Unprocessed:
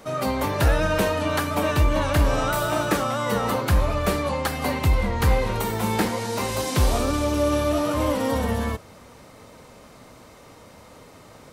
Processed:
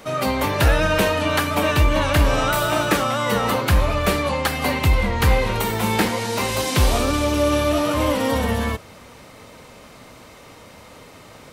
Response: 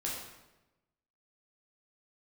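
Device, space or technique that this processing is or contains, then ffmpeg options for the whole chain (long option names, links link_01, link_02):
presence and air boost: -af "equalizer=frequency=2700:width_type=o:width=1.4:gain=5,highshelf=frequency=12000:gain=3,volume=2.5dB"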